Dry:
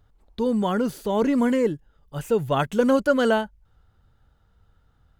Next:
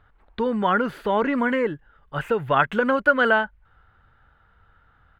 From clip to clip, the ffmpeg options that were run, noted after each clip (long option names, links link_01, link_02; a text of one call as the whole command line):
ffmpeg -i in.wav -af "acompressor=threshold=-23dB:ratio=3,firequalizer=gain_entry='entry(190,0);entry(1500,15);entry(5700,-12)':delay=0.05:min_phase=1" out.wav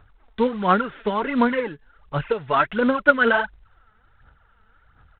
ffmpeg -i in.wav -af "aphaser=in_gain=1:out_gain=1:delay=4.7:decay=0.62:speed=1.4:type=sinusoidal,aresample=8000,acrusher=bits=5:mode=log:mix=0:aa=0.000001,aresample=44100,volume=-2.5dB" out.wav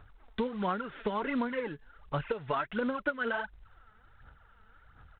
ffmpeg -i in.wav -af "acompressor=threshold=-27dB:ratio=10,volume=-1.5dB" out.wav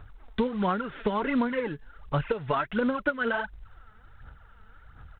ffmpeg -i in.wav -af "lowshelf=frequency=210:gain=5,volume=4dB" out.wav